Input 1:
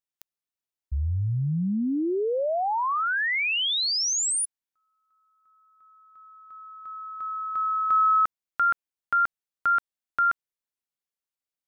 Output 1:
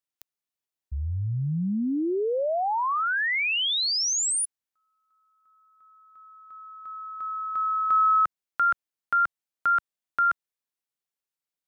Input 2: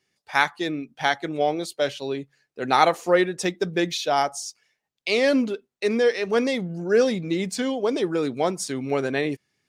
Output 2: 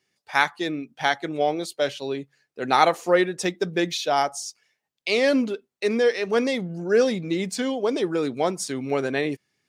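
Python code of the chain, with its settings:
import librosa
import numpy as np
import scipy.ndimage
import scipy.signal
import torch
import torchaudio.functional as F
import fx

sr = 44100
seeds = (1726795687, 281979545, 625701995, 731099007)

y = fx.low_shelf(x, sr, hz=66.0, db=-7.5)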